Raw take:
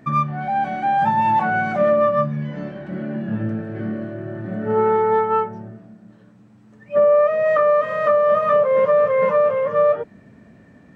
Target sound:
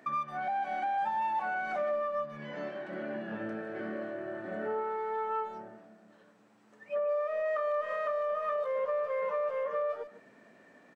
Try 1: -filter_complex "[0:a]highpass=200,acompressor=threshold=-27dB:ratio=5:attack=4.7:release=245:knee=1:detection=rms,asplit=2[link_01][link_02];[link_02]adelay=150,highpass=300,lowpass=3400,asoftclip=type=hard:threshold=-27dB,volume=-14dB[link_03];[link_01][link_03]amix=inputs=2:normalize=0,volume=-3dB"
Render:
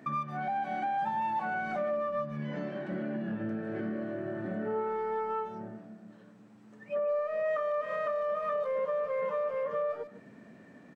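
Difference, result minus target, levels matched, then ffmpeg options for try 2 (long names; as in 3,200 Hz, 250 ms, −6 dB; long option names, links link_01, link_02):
250 Hz band +6.0 dB
-filter_complex "[0:a]highpass=450,acompressor=threshold=-27dB:ratio=5:attack=4.7:release=245:knee=1:detection=rms,asplit=2[link_01][link_02];[link_02]adelay=150,highpass=300,lowpass=3400,asoftclip=type=hard:threshold=-27dB,volume=-14dB[link_03];[link_01][link_03]amix=inputs=2:normalize=0,volume=-3dB"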